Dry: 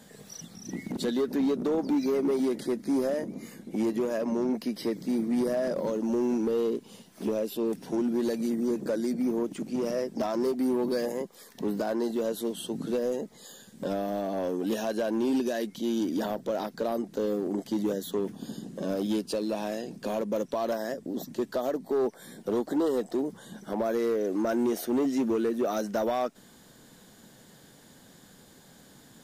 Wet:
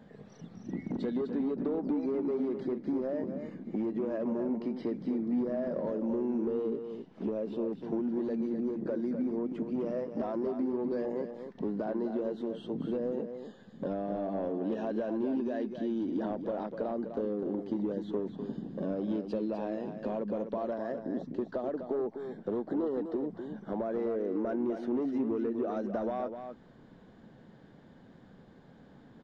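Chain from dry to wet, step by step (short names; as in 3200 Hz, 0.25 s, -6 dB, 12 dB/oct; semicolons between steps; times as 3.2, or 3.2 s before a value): compressor, threshold -29 dBFS, peak gain reduction 6 dB; tape spacing loss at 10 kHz 42 dB; on a send: echo 0.252 s -8 dB; on the sum: gain +1 dB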